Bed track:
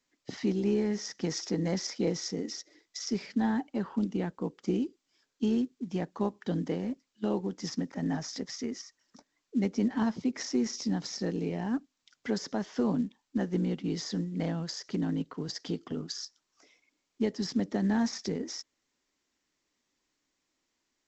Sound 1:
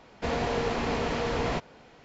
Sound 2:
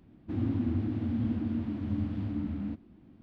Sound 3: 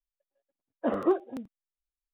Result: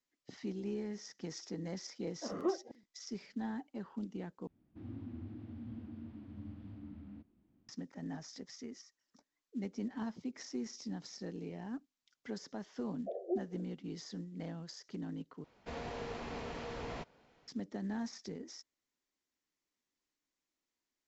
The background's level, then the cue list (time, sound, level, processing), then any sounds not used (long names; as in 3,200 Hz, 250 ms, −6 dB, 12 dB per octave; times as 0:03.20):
bed track −11.5 dB
0:01.38: mix in 3 −5.5 dB + shaped tremolo saw up 1.5 Hz, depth 100%
0:04.47: overwrite with 2 −16 dB
0:12.23: mix in 3 −10.5 dB + brick-wall band-pass 340–770 Hz
0:15.44: overwrite with 1 −14 dB